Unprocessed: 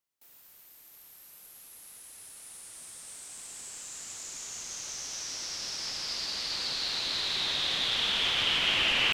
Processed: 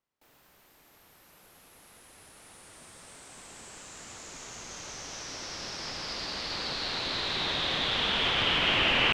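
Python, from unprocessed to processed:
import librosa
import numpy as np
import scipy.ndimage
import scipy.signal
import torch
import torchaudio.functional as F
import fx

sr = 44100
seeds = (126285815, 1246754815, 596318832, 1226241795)

y = fx.lowpass(x, sr, hz=1300.0, slope=6)
y = y * 10.0 ** (8.0 / 20.0)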